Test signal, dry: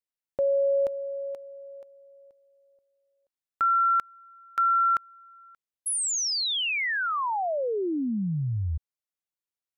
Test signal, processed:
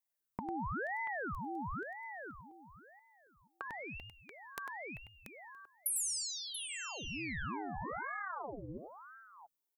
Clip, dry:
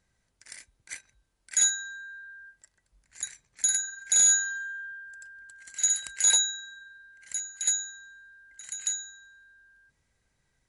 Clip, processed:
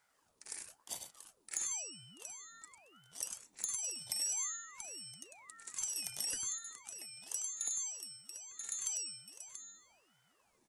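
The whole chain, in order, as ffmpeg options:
ffmpeg -i in.wav -filter_complex "[0:a]acompressor=threshold=-41dB:ratio=4:attack=36:release=22:detection=peak,equalizer=frequency=100:width_type=o:width=0.67:gain=-10,equalizer=frequency=630:width_type=o:width=0.67:gain=12,equalizer=frequency=1600:width_type=o:width=0.67:gain=-7,acrossover=split=2000|6300[link_01][link_02][link_03];[link_01]acompressor=threshold=-37dB:ratio=10[link_04];[link_02]acompressor=threshold=-55dB:ratio=2[link_05];[link_03]acompressor=threshold=-39dB:ratio=2[link_06];[link_04][link_05][link_06]amix=inputs=3:normalize=0,highshelf=frequency=9500:gain=12,bandreject=frequency=2700:width=22,asplit=2[link_07][link_08];[link_08]aecho=0:1:99|684:0.447|0.299[link_09];[link_07][link_09]amix=inputs=2:normalize=0,asoftclip=type=tanh:threshold=-19dB,aeval=exprs='val(0)*sin(2*PI*840*n/s+840*0.75/0.98*sin(2*PI*0.98*n/s))':channel_layout=same" out.wav

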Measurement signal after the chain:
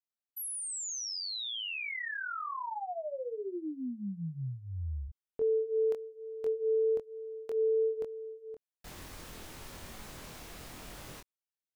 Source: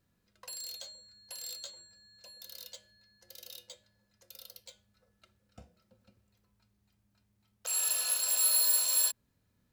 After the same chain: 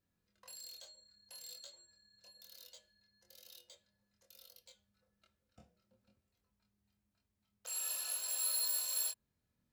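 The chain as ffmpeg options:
ffmpeg -i in.wav -af "flanger=delay=22.5:depth=2.5:speed=1.1,volume=-5.5dB" out.wav

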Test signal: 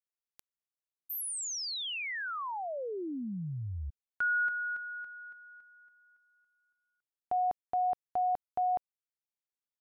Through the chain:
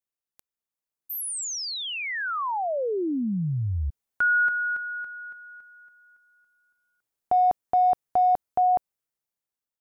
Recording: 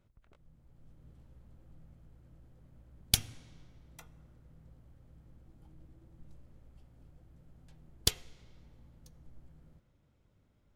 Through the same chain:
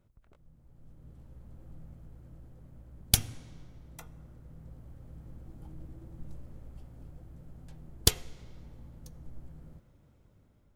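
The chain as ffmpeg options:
ffmpeg -i in.wav -filter_complex "[0:a]equalizer=frequency=3200:width=0.54:gain=-5,dynaudnorm=framelen=560:gausssize=5:maxgain=8.5dB,asplit=2[link_01][link_02];[link_02]asoftclip=type=hard:threshold=-19dB,volume=-11dB[link_03];[link_01][link_03]amix=inputs=2:normalize=0" out.wav

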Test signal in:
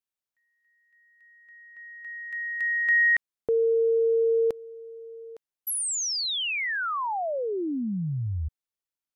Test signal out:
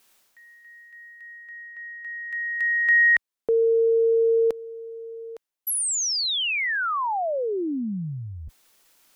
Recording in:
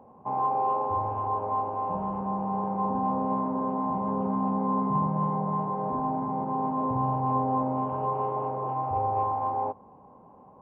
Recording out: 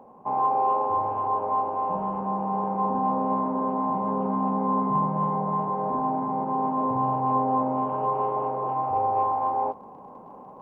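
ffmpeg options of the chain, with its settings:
ffmpeg -i in.wav -af "equalizer=frequency=80:width=0.93:gain=-13,areverse,acompressor=mode=upward:threshold=-36dB:ratio=2.5:attack=0.13:release=539:knee=2.83:detection=peak,areverse,volume=3.5dB" out.wav

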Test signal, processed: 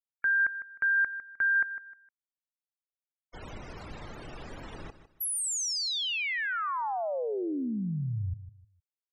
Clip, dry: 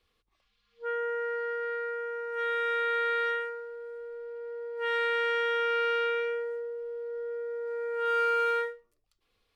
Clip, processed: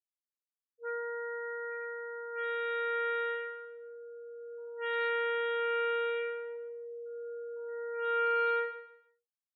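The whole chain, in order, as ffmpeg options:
ffmpeg -i in.wav -af "afftfilt=real='re*gte(hypot(re,im),0.0141)':imag='im*gte(hypot(re,im),0.0141)':win_size=1024:overlap=0.75,aecho=1:1:154|308|462:0.224|0.0627|0.0176,volume=-4.5dB" out.wav

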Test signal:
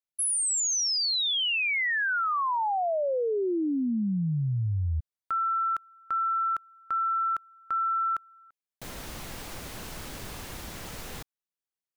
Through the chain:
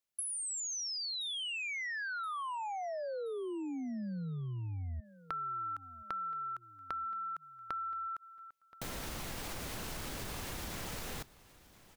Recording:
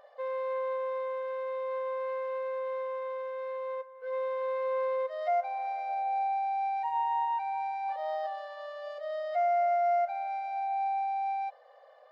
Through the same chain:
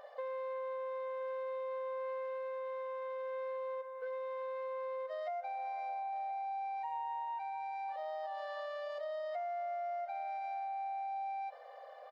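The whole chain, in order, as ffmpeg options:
ffmpeg -i in.wav -af "acompressor=threshold=-44dB:ratio=6:attack=24:release=62:knee=1:detection=rms,aecho=1:1:1025|2050|3075:0.1|0.043|0.0185,volume=3.5dB" out.wav

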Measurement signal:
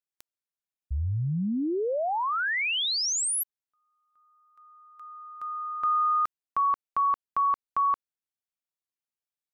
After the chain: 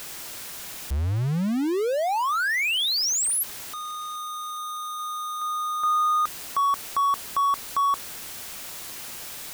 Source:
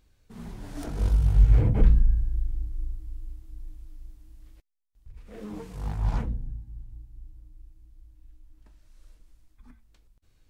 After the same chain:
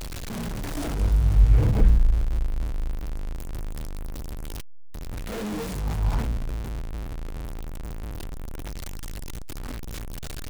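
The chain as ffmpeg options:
ffmpeg -i in.wav -af "aeval=exprs='val(0)+0.5*0.0422*sgn(val(0))':channel_layout=same" out.wav

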